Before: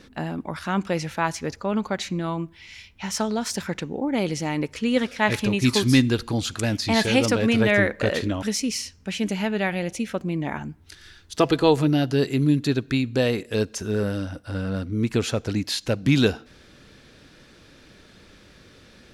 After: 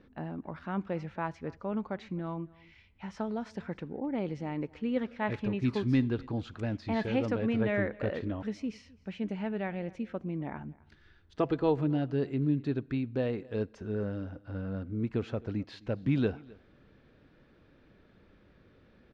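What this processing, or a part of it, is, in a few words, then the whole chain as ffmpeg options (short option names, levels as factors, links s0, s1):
phone in a pocket: -af "lowpass=3300,highshelf=f=2000:g=-11.5,aecho=1:1:261:0.0668,volume=0.376"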